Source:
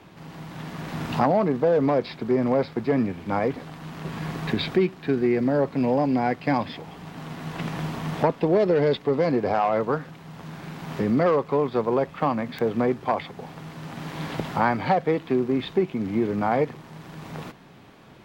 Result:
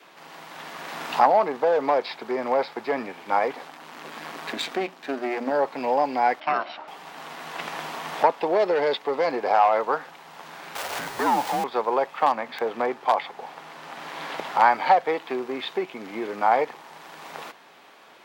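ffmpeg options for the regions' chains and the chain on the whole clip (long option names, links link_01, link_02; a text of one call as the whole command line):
ffmpeg -i in.wav -filter_complex "[0:a]asettb=1/sr,asplit=3[link_01][link_02][link_03];[link_01]atrim=end=3.674[link_04];[link_02]atrim=start=3.67:end=5.51,asetpts=PTS-STARTPTS,afade=type=in:duration=0.004:curve=qsin,afade=type=out:start_time=1.836:duration=0.004:curve=qsin,aeval=exprs='if(lt(val(0),0),0.251*val(0),val(0))':channel_layout=same,equalizer=frequency=250:width_type=o:width=0.49:gain=10,bandreject=frequency=60:width_type=h:width=6,bandreject=frequency=120:width_type=h:width=6,bandreject=frequency=180:width_type=h:width=6,bandreject=frequency=240:width_type=h:width=6[link_05];[link_03]atrim=start=5.506[link_06];[link_04][link_05]acrossfade=duration=0.004:curve1=hsin:curve2=qsin[link_07];[link_07][link_06]acrossfade=duration=0.004:curve1=qsin:curve2=hsin,asettb=1/sr,asplit=3[link_08][link_09][link_10];[link_08]atrim=end=6.404[link_11];[link_09]atrim=start=6.4:end=6.88,asetpts=PTS-STARTPTS,afade=type=in:duration=0.004:curve=qsin,afade=type=out:start_time=0.476:duration=0.004:curve=qsin,lowpass=3700,aeval=exprs='val(0)*sin(2*PI*460*n/s)':channel_layout=same[link_12];[link_10]atrim=start=6.876[link_13];[link_11][link_12]acrossfade=duration=0.004:curve1=hsin:curve2=qsin[link_14];[link_14][link_13]acrossfade=duration=0.004:curve1=qsin:curve2=hsin,asettb=1/sr,asplit=3[link_15][link_16][link_17];[link_15]atrim=end=10.754[link_18];[link_16]atrim=start=10.75:end=11.64,asetpts=PTS-STARTPTS,afade=type=in:duration=0.004:curve=qsin,afade=type=out:start_time=0.886:duration=0.004:curve=qsin,aeval=exprs='val(0)+0.5*0.0422*sgn(val(0))':channel_layout=same,afreqshift=-250,acrusher=bits=8:mix=0:aa=0.5[link_19];[link_17]atrim=start=11.636[link_20];[link_18][link_19]acrossfade=duration=0.004:curve1=hsin:curve2=qsin[link_21];[link_21][link_20]acrossfade=duration=0.004:curve1=qsin:curve2=hsin,asettb=1/sr,asplit=3[link_22][link_23][link_24];[link_22]atrim=end=12.264[link_25];[link_23]atrim=start=12.26:end=14.62,asetpts=PTS-STARTPTS,afade=type=in:duration=0.004:curve=qsin,afade=type=out:start_time=2.356:duration=0.004:curve=qsin,highshelf=frequency=5200:gain=-6,aeval=exprs='0.224*(abs(mod(val(0)/0.224+3,4)-2)-1)':channel_layout=same[link_26];[link_24]atrim=start=14.616[link_27];[link_25][link_26]acrossfade=duration=0.004:curve1=hsin:curve2=qsin[link_28];[link_28][link_27]acrossfade=duration=0.004:curve1=qsin:curve2=hsin,highpass=600,adynamicequalizer=threshold=0.00794:dfrequency=850:dqfactor=4.4:tfrequency=850:tqfactor=4.4:attack=5:release=100:ratio=0.375:range=3:mode=boostabove:tftype=bell,volume=3.5dB" out.wav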